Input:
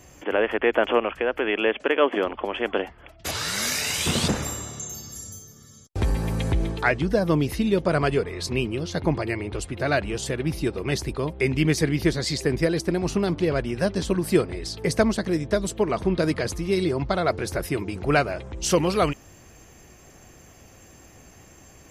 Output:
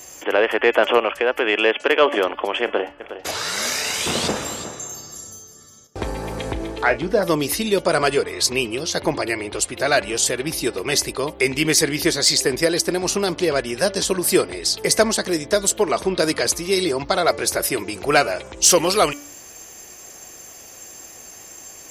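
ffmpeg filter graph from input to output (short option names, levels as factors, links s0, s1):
-filter_complex "[0:a]asettb=1/sr,asplit=3[s0][s1][s2];[s0]atrim=end=2.644[s3];[s1]atrim=start=2.64:end=7.23,asetpts=PTS-STARTPTS,afade=t=in:d=0.004:c=qsin,afade=t=out:st=4.586:d=0.004:c=qsin,lowpass=f=1500:p=1,asplit=2[s4][s5];[s5]adelay=34,volume=0.224[s6];[s4][s6]amix=inputs=2:normalize=0,atrim=end_sample=202419,aecho=1:1:361:0.237,atrim=end_sample=202419[s7];[s2]atrim=start=7.226[s8];[s3][s7]acrossfade=d=0.004:c1=hsin:c2=qsin[s9];[s9][s8]acrossfade=d=0.004:c1=qsin:c2=hsin,bass=f=250:g=-14,treble=f=4000:g=10,bandreject=f=288.5:t=h:w=4,bandreject=f=577:t=h:w=4,bandreject=f=865.5:t=h:w=4,bandreject=f=1154:t=h:w=4,bandreject=f=1442.5:t=h:w=4,bandreject=f=1731:t=h:w=4,bandreject=f=2019.5:t=h:w=4,bandreject=f=2308:t=h:w=4,bandreject=f=2596.5:t=h:w=4,bandreject=f=2885:t=h:w=4,bandreject=f=3173.5:t=h:w=4,acontrast=56"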